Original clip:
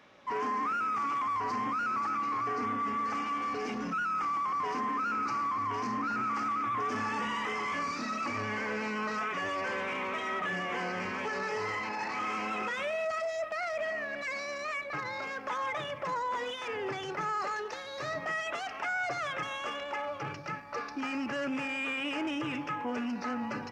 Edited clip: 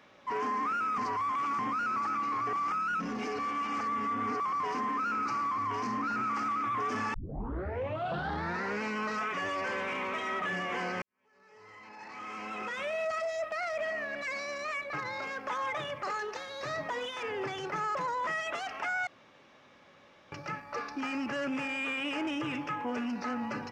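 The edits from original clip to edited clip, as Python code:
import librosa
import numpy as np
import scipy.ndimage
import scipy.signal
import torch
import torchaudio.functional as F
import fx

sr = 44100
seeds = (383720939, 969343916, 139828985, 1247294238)

y = fx.edit(x, sr, fx.reverse_span(start_s=0.98, length_s=0.61),
    fx.reverse_span(start_s=2.53, length_s=1.87),
    fx.tape_start(start_s=7.14, length_s=1.67),
    fx.fade_in_span(start_s=11.02, length_s=1.99, curve='qua'),
    fx.swap(start_s=16.03, length_s=0.32, other_s=17.4, other_length_s=0.87),
    fx.room_tone_fill(start_s=19.07, length_s=1.25), tone=tone)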